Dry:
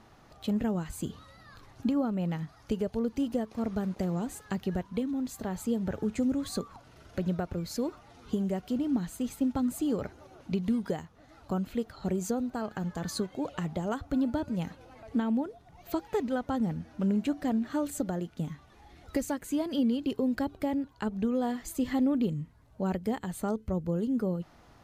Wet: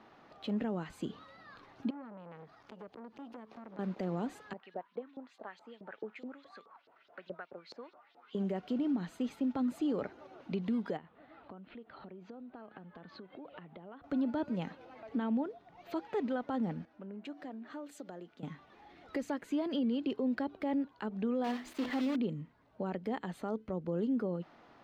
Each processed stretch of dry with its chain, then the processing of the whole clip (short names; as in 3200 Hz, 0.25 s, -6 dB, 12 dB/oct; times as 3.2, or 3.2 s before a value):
1.9–3.79 compressor, threshold -41 dBFS + core saturation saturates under 1700 Hz
4.53–8.35 LFO band-pass saw up 4.7 Hz 470–4600 Hz + hard clip -28.5 dBFS
10.97–14.04 LPF 3600 Hz 24 dB/oct + compressor, threshold -45 dBFS
16.85–18.43 tone controls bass -6 dB, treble +2 dB + compressor 3:1, threshold -43 dBFS + three-band expander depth 70%
21.44–22.16 block floating point 3-bit + notches 50/100/150/200/250/300/350/400/450/500 Hz
whole clip: three-band isolator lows -19 dB, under 180 Hz, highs -21 dB, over 4300 Hz; limiter -26 dBFS